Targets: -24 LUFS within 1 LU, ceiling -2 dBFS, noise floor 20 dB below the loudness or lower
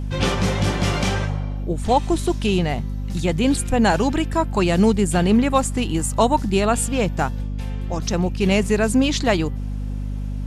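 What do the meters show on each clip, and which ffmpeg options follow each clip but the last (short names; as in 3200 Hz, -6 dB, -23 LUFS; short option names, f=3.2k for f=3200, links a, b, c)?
hum 50 Hz; harmonics up to 250 Hz; hum level -23 dBFS; loudness -21.0 LUFS; peak -4.5 dBFS; loudness target -24.0 LUFS
-> -af "bandreject=f=50:t=h:w=4,bandreject=f=100:t=h:w=4,bandreject=f=150:t=h:w=4,bandreject=f=200:t=h:w=4,bandreject=f=250:t=h:w=4"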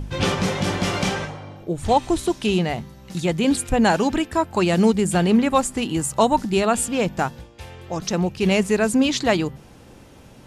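hum none; loudness -21.0 LUFS; peak -5.5 dBFS; loudness target -24.0 LUFS
-> -af "volume=-3dB"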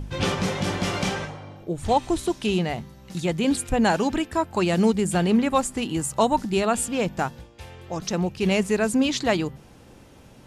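loudness -24.0 LUFS; peak -8.5 dBFS; noise floor -49 dBFS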